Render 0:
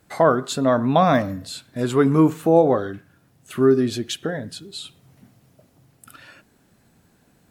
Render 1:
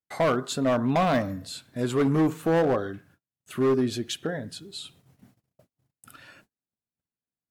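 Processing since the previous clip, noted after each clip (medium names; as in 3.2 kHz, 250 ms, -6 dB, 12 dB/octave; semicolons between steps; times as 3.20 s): gate -52 dBFS, range -37 dB; hard clipper -14 dBFS, distortion -11 dB; trim -4 dB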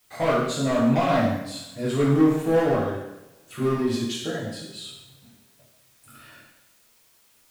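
in parallel at -11.5 dB: word length cut 8-bit, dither triangular; on the sum: two-slope reverb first 0.86 s, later 2.7 s, from -27 dB, DRR -7.5 dB; trim -8.5 dB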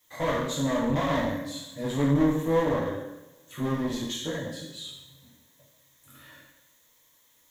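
one-sided clip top -27.5 dBFS; rippled EQ curve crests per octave 1.1, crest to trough 10 dB; trim -3.5 dB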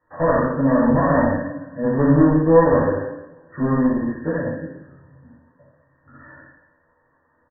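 brick-wall FIR low-pass 1.9 kHz; on a send: early reflections 12 ms -5.5 dB, 59 ms -4 dB; on the sum: trim +7 dB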